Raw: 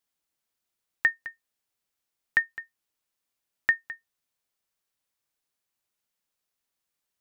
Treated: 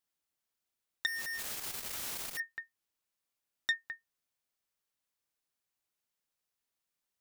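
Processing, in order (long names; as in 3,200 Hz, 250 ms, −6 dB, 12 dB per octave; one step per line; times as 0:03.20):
0:01.06–0:02.40: sign of each sample alone
saturating transformer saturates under 3,200 Hz
level −4 dB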